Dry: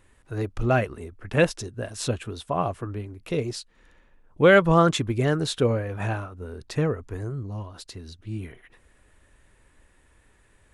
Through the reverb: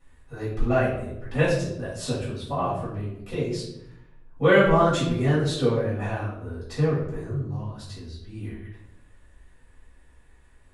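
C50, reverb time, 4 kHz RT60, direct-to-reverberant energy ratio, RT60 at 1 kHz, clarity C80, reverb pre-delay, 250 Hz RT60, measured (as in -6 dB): 3.0 dB, 0.80 s, 0.55 s, -10.0 dB, 0.70 s, 7.5 dB, 4 ms, 1.1 s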